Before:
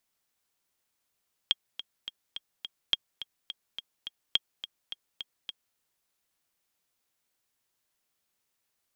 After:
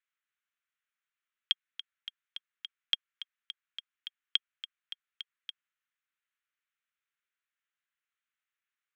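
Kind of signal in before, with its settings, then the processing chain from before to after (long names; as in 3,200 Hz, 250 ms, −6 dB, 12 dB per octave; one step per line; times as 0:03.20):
click track 211 BPM, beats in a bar 5, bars 3, 3,250 Hz, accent 13.5 dB −10 dBFS
adaptive Wiener filter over 9 samples
Butterworth high-pass 1,300 Hz 36 dB per octave
high-frequency loss of the air 61 metres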